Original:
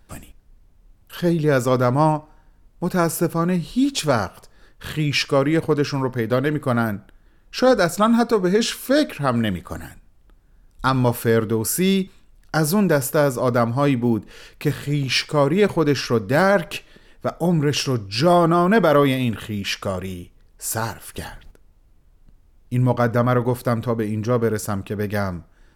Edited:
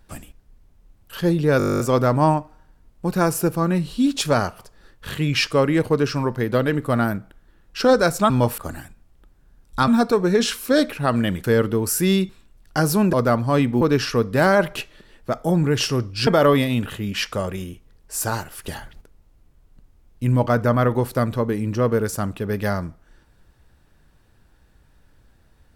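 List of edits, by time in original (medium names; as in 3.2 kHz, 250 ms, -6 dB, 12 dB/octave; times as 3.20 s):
1.58 s: stutter 0.02 s, 12 plays
8.08–9.64 s: swap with 10.94–11.22 s
12.91–13.42 s: delete
14.10–15.77 s: delete
18.23–18.77 s: delete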